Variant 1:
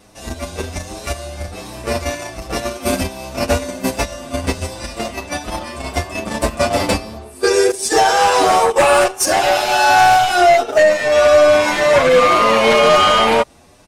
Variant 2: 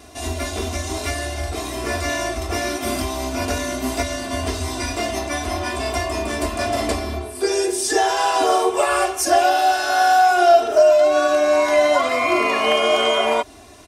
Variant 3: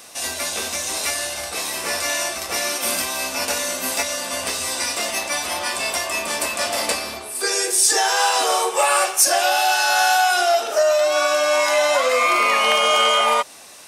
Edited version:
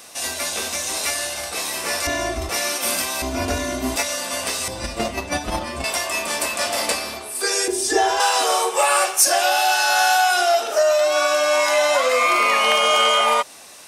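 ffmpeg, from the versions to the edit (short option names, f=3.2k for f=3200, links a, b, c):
-filter_complex "[1:a]asplit=3[a][b][c];[2:a]asplit=5[d][e][f][g][h];[d]atrim=end=2.072[i];[a]atrim=start=2.068:end=2.492[j];[e]atrim=start=2.488:end=3.222[k];[b]atrim=start=3.218:end=3.962[l];[f]atrim=start=3.958:end=4.682[m];[0:a]atrim=start=4.678:end=5.842[n];[g]atrim=start=5.838:end=7.682[o];[c]atrim=start=7.678:end=8.202[p];[h]atrim=start=8.198[q];[i][j]acrossfade=d=0.004:c1=hsin:c2=hsin[r];[r][k]acrossfade=d=0.004:c1=hsin:c2=hsin[s];[s][l]acrossfade=d=0.004:c1=hsin:c2=hsin[t];[t][m]acrossfade=d=0.004:c1=hsin:c2=hsin[u];[u][n]acrossfade=d=0.004:c1=hsin:c2=hsin[v];[v][o]acrossfade=d=0.004:c1=hsin:c2=hsin[w];[w][p]acrossfade=d=0.004:c1=hsin:c2=hsin[x];[x][q]acrossfade=d=0.004:c1=hsin:c2=hsin"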